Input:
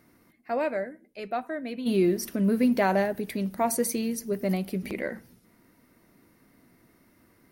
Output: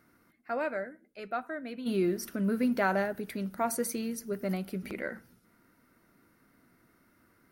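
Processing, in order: peaking EQ 1.4 kHz +10.5 dB 0.37 oct; trim -5.5 dB

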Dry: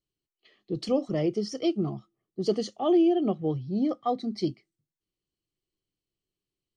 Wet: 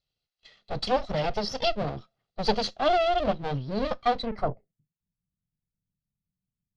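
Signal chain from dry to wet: comb filter that takes the minimum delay 1.5 ms; low-pass sweep 4.3 kHz -> 190 Hz, 4.20–4.78 s; trim +4 dB

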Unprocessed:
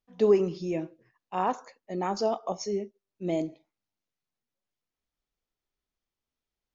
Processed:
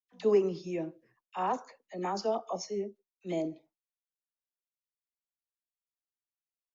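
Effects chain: gate with hold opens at -56 dBFS; bass shelf 160 Hz -6 dB; phase dispersion lows, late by 44 ms, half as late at 1.1 kHz; trim -3 dB

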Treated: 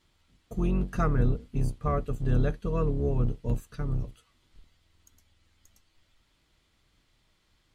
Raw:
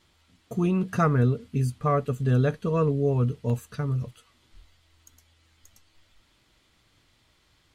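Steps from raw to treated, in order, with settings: octave divider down 2 oct, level +3 dB; trim -6 dB

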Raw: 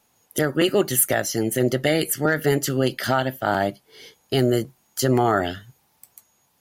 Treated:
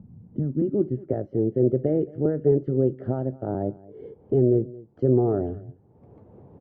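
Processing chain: low-pass 3.3 kHz 12 dB/octave; peaking EQ 97 Hz +8 dB 1.5 oct; upward compressor, threshold -20 dBFS; low-pass sweep 180 Hz -> 430 Hz, 0.21–1.14 s; on a send: delay 222 ms -21 dB; on the sum: trim -6.5 dB

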